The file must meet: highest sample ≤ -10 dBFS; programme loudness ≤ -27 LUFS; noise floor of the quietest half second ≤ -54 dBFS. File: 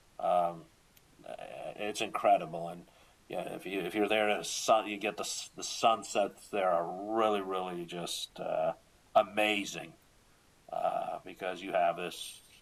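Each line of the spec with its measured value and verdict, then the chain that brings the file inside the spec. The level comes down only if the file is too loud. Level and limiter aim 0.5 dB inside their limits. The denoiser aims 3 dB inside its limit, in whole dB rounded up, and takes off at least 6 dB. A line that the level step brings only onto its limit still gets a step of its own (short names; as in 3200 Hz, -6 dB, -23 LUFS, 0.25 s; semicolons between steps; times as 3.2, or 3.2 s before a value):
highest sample -13.0 dBFS: OK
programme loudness -33.0 LUFS: OK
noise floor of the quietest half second -64 dBFS: OK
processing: none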